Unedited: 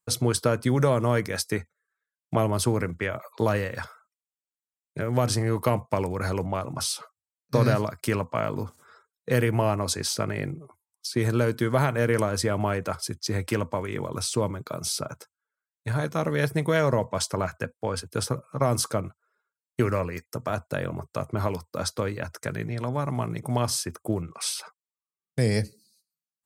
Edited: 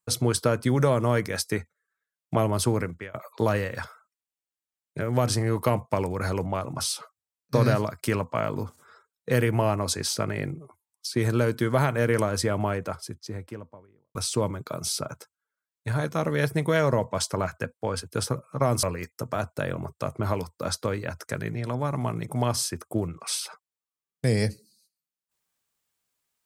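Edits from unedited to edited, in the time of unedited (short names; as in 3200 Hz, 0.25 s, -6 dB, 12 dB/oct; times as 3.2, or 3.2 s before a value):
2.78–3.14 fade out, to -21.5 dB
12.37–14.15 studio fade out
18.83–19.97 cut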